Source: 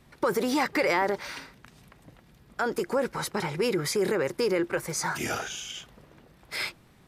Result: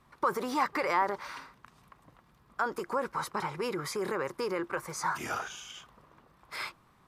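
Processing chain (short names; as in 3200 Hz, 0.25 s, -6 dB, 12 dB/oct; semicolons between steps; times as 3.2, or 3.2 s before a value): bell 1100 Hz +13.5 dB 0.74 oct; gain -8.5 dB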